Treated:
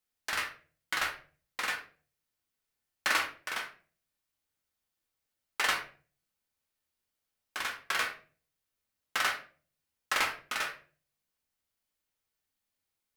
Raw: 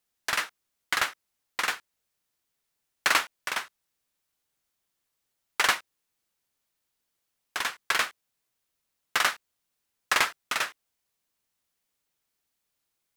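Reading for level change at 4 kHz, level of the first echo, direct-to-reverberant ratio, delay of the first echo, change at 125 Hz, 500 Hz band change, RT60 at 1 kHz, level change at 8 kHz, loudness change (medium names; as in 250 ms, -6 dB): -5.5 dB, no echo, 1.0 dB, no echo, -3.5 dB, -4.5 dB, 0.35 s, -6.5 dB, -5.0 dB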